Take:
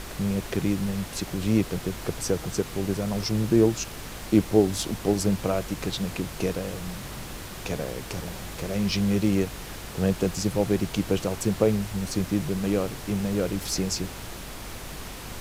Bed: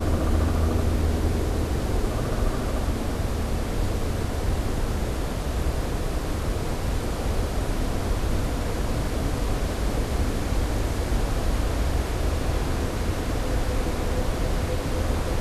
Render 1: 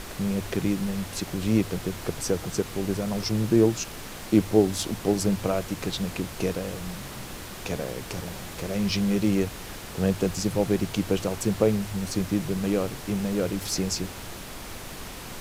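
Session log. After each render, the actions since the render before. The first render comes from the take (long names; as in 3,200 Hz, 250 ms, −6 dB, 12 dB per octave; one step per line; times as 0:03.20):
hum removal 50 Hz, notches 3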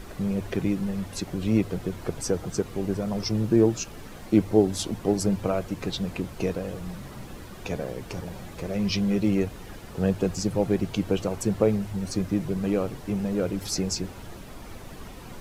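broadband denoise 10 dB, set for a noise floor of −39 dBFS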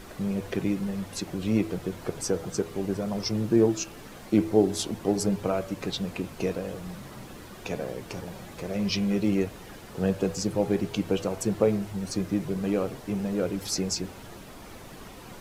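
low-shelf EQ 98 Hz −9 dB
hum removal 82.13 Hz, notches 35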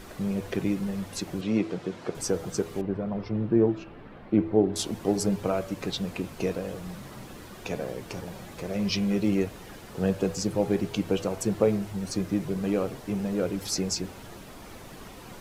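0:01.41–0:02.15: band-pass filter 150–5,800 Hz
0:02.81–0:04.76: high-frequency loss of the air 470 metres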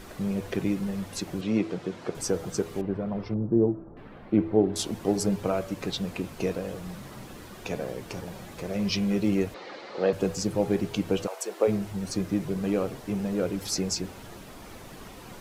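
0:03.34–0:03.97: Gaussian smoothing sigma 8.3 samples
0:09.54–0:10.13: loudspeaker in its box 310–5,400 Hz, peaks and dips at 330 Hz +5 dB, 540 Hz +10 dB, 810 Hz +5 dB, 1,200 Hz +6 dB, 2,100 Hz +8 dB, 4,200 Hz +9 dB
0:11.26–0:11.67: high-pass filter 640 Hz → 310 Hz 24 dB per octave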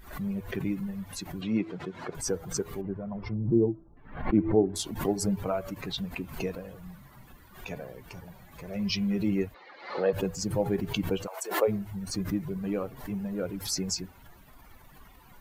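spectral dynamics exaggerated over time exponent 1.5
background raised ahead of every attack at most 100 dB per second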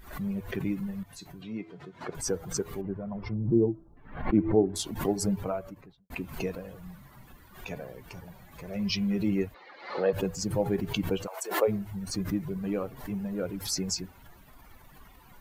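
0:01.03–0:02.01: tuned comb filter 140 Hz, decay 0.21 s, harmonics odd, mix 70%
0:05.29–0:06.10: fade out and dull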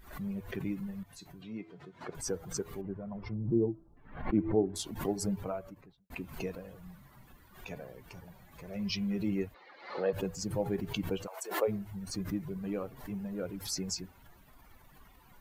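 level −5 dB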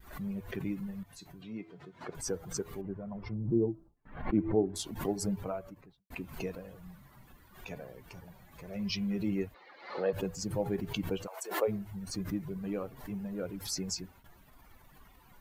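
noise gate with hold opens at −49 dBFS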